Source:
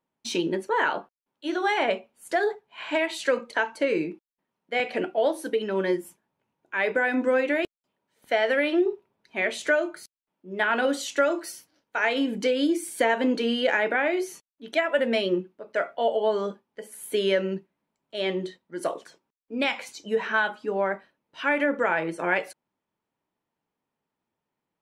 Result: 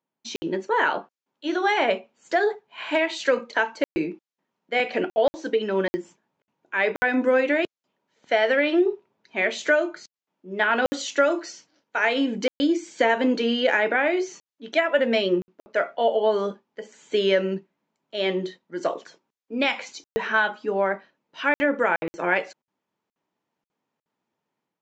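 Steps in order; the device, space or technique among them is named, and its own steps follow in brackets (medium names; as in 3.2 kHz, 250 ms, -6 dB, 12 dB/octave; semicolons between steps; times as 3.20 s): call with lost packets (high-pass 130 Hz; resampled via 16 kHz; level rider gain up to 6.5 dB; lost packets of 60 ms random); trim -3.5 dB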